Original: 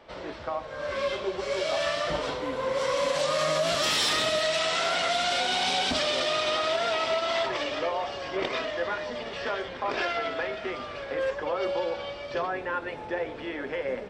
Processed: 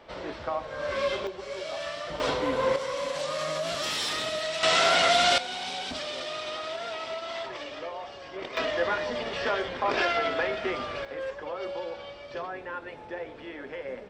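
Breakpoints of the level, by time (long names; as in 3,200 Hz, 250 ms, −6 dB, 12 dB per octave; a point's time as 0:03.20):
+1 dB
from 0:01.27 −7 dB
from 0:02.20 +4 dB
from 0:02.76 −5 dB
from 0:04.63 +5 dB
from 0:05.38 −8 dB
from 0:08.57 +3 dB
from 0:11.05 −6 dB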